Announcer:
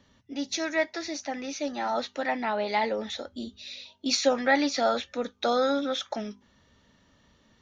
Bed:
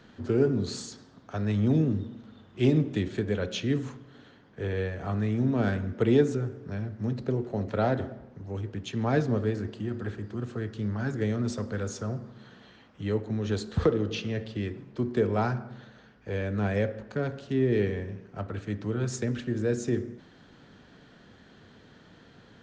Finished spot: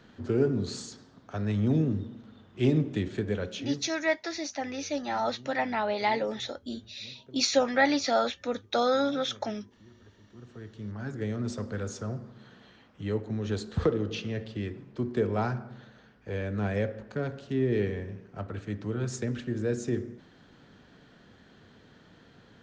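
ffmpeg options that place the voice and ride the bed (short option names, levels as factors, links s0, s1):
-filter_complex "[0:a]adelay=3300,volume=0.944[s0];[1:a]volume=9.44,afade=t=out:st=3.33:d=0.6:silence=0.0841395,afade=t=in:st=10.19:d=1.43:silence=0.0891251[s1];[s0][s1]amix=inputs=2:normalize=0"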